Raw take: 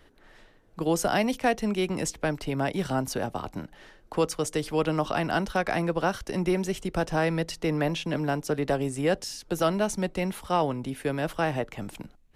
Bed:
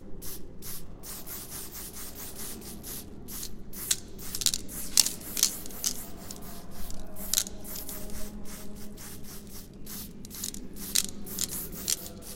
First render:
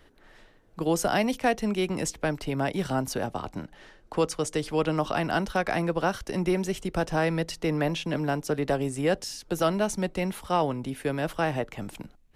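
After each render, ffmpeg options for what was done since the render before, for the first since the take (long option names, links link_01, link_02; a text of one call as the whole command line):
ffmpeg -i in.wav -filter_complex "[0:a]asettb=1/sr,asplit=3[link_01][link_02][link_03];[link_01]atrim=end=3.284[link_04];[link_02]atrim=start=3.28:end=4.97,asetpts=PTS-STARTPTS,afade=type=in:duration=0.004:curve=qsin,afade=type=out:start_time=1.686:duration=0.004:curve=qsin,lowpass=11000[link_05];[link_03]atrim=start=4.966[link_06];[link_04][link_05]acrossfade=duration=0.004:curve1=hsin:curve2=qsin[link_07];[link_07][link_06]acrossfade=duration=0.004:curve1=qsin:curve2=hsin" out.wav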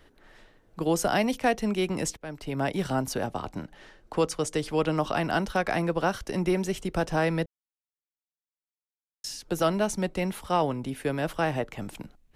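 ffmpeg -i in.wav -filter_complex "[0:a]asplit=4[link_01][link_02][link_03][link_04];[link_01]atrim=end=2.17,asetpts=PTS-STARTPTS,afade=type=out:start_time=2.166:duration=0.004:curve=hsin:silence=0.0891251[link_05];[link_02]atrim=start=2.17:end=7.46,asetpts=PTS-STARTPTS,afade=type=in:duration=0.48:silence=0.0891251,afade=type=out:start_time=5.286:duration=0.004:curve=hsin[link_06];[link_03]atrim=start=7.46:end=9.24,asetpts=PTS-STARTPTS,volume=0[link_07];[link_04]atrim=start=9.24,asetpts=PTS-STARTPTS,afade=type=in:duration=0.004:curve=hsin[link_08];[link_05][link_06][link_07][link_08]concat=n=4:v=0:a=1" out.wav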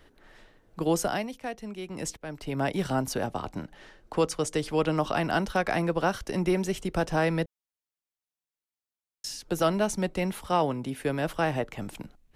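ffmpeg -i in.wav -filter_complex "[0:a]asettb=1/sr,asplit=3[link_01][link_02][link_03];[link_01]atrim=end=10.524[link_04];[link_02]atrim=start=10.52:end=10.99,asetpts=PTS-STARTPTS,afade=type=in:duration=0.004:curve=qsin,afade=type=out:start_time=0.466:duration=0.004:curve=qsin,highpass=88[link_05];[link_03]atrim=start=10.986[link_06];[link_04][link_05]acrossfade=duration=0.004:curve1=hsin:curve2=qsin[link_07];[link_07][link_06]acrossfade=duration=0.004:curve1=qsin:curve2=hsin,asplit=3[link_08][link_09][link_10];[link_08]atrim=end=1.29,asetpts=PTS-STARTPTS,afade=type=out:start_time=0.95:duration=0.34:silence=0.281838[link_11];[link_09]atrim=start=1.29:end=1.88,asetpts=PTS-STARTPTS,volume=-11dB[link_12];[link_10]atrim=start=1.88,asetpts=PTS-STARTPTS,afade=type=in:duration=0.34:silence=0.281838[link_13];[link_11][link_12][link_13]concat=n=3:v=0:a=1" out.wav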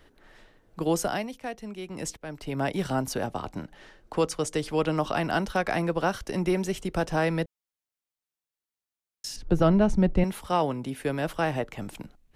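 ffmpeg -i in.wav -filter_complex "[0:a]asettb=1/sr,asplit=3[link_01][link_02][link_03];[link_01]atrim=end=9.364[link_04];[link_02]atrim=start=9.36:end=10.24,asetpts=PTS-STARTPTS,afade=type=in:duration=0.004:curve=qsin,afade=type=out:start_time=0.876:duration=0.004:curve=qsin,aemphasis=mode=reproduction:type=riaa[link_05];[link_03]atrim=start=10.236[link_06];[link_04][link_05]acrossfade=duration=0.004:curve1=hsin:curve2=qsin[link_07];[link_07][link_06]acrossfade=duration=0.004:curve1=qsin:curve2=hsin" out.wav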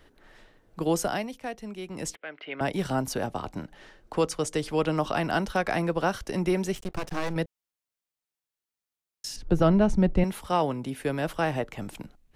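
ffmpeg -i in.wav -filter_complex "[0:a]asettb=1/sr,asplit=3[link_01][link_02][link_03];[link_01]atrim=end=2.154[link_04];[link_02]atrim=start=2.15:end=2.61,asetpts=PTS-STARTPTS,afade=type=in:duration=0.004:curve=qsin,afade=type=out:start_time=0.456:duration=0.004:curve=qsin,highpass=460,equalizer=frequency=910:width_type=q:width=4:gain=-8,equalizer=frequency=1500:width_type=q:width=4:gain=5,equalizer=frequency=2100:width_type=q:width=4:gain=8,equalizer=frequency=3100:width_type=q:width=4:gain=6,lowpass=frequency=3300:width=0.5412,lowpass=frequency=3300:width=1.3066[link_05];[link_03]atrim=start=2.606[link_06];[link_04][link_05]acrossfade=duration=0.004:curve1=hsin:curve2=qsin[link_07];[link_07][link_06]acrossfade=duration=0.004:curve1=qsin:curve2=hsin,asettb=1/sr,asplit=3[link_08][link_09][link_10];[link_08]atrim=end=6.754[link_11];[link_09]atrim=start=6.75:end=7.36,asetpts=PTS-STARTPTS,afade=type=in:duration=0.004:curve=qsin,afade=type=out:start_time=0.606:duration=0.004:curve=qsin,aeval=exprs='max(val(0),0)':channel_layout=same[link_12];[link_10]atrim=start=7.356[link_13];[link_11][link_12]acrossfade=duration=0.004:curve1=hsin:curve2=qsin[link_14];[link_14][link_13]acrossfade=duration=0.004:curve1=qsin:curve2=hsin" out.wav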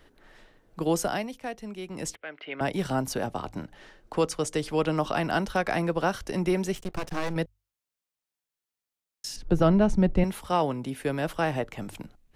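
ffmpeg -i in.wav -af "bandreject=frequency=50:width_type=h:width=6,bandreject=frequency=100:width_type=h:width=6" out.wav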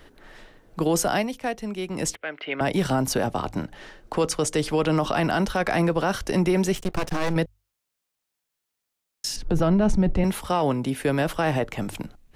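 ffmpeg -i in.wav -af "acontrast=86,alimiter=limit=-13.5dB:level=0:latency=1:release=18" out.wav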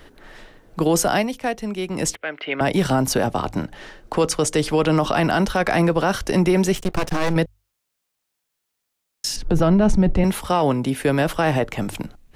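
ffmpeg -i in.wav -af "volume=4dB" out.wav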